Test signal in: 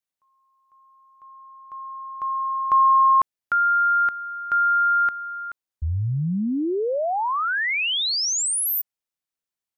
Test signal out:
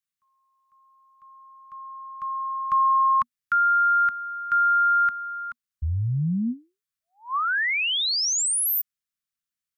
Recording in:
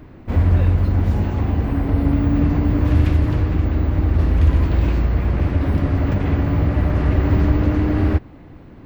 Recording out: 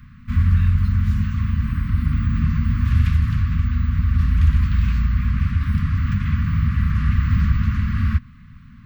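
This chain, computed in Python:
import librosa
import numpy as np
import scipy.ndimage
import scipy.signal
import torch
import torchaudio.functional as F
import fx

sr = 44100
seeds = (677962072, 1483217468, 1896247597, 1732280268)

y = scipy.signal.sosfilt(scipy.signal.cheby1(5, 1.0, [240.0, 1100.0], 'bandstop', fs=sr, output='sos'), x)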